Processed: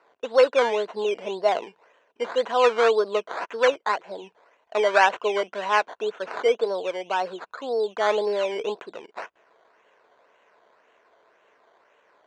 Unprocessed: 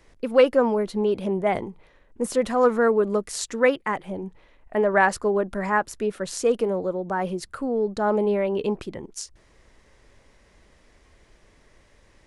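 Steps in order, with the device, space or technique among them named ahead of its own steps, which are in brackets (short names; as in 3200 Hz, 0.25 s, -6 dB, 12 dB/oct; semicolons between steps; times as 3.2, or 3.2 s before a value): circuit-bent sampling toy (decimation with a swept rate 13×, swing 60% 1.9 Hz; speaker cabinet 440–5900 Hz, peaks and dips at 450 Hz +7 dB, 670 Hz +8 dB, 1000 Hz +8 dB, 1500 Hz +7 dB, 2700 Hz +4 dB, 5100 Hz -7 dB); gain -4 dB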